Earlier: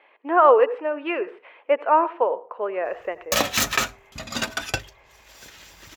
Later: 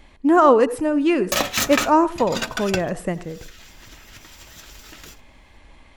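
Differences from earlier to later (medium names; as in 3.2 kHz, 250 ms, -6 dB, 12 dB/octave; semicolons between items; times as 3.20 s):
speech: remove Chebyshev band-pass 440–2700 Hz, order 3; background: entry -2.00 s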